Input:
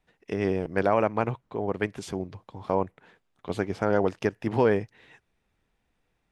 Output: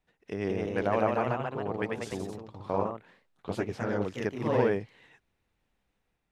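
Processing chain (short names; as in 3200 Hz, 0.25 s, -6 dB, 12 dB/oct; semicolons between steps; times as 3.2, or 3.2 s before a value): echoes that change speed 0.196 s, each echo +1 st, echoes 3; 3.68–4.26 dynamic EQ 730 Hz, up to -8 dB, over -35 dBFS, Q 0.89; gain -5.5 dB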